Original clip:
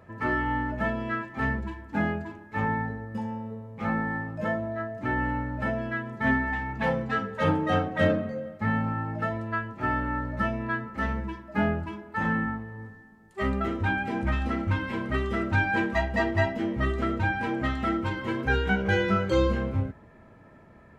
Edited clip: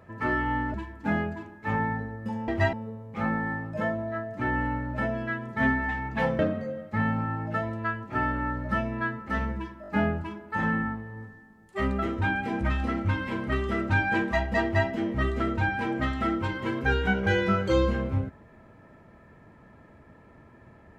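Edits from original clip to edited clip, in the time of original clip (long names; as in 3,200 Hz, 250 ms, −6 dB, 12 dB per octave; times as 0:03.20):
0:00.74–0:01.63: remove
0:07.03–0:08.07: remove
0:11.50: stutter 0.02 s, 4 plays
0:16.25–0:16.50: duplicate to 0:03.37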